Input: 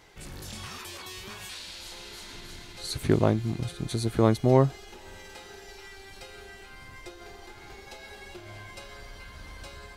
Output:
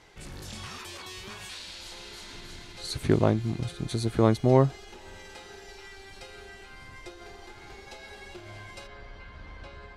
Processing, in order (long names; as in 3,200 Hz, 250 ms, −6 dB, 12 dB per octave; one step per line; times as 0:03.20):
Bessel low-pass filter 9,500 Hz, order 2, from 0:08.86 2,500 Hz